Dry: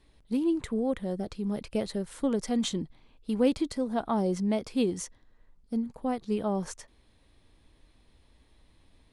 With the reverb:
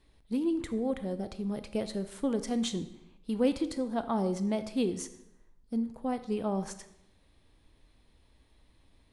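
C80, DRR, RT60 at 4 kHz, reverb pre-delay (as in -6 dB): 15.5 dB, 11.0 dB, 0.70 s, 22 ms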